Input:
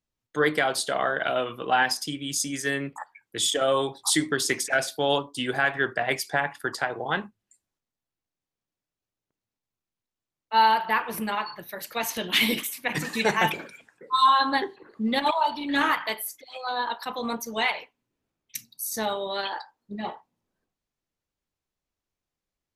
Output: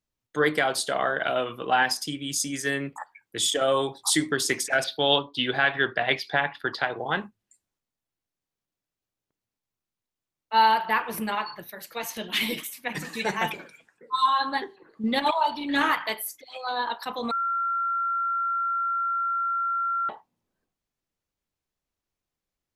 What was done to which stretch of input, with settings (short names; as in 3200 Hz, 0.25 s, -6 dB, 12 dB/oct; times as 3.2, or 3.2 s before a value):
4.84–6.98 resonant high shelf 5500 Hz -13.5 dB, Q 3
11.7–15.04 flange 1.7 Hz, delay 4.1 ms, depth 2.5 ms, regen +61%
17.31–20.09 bleep 1370 Hz -23.5 dBFS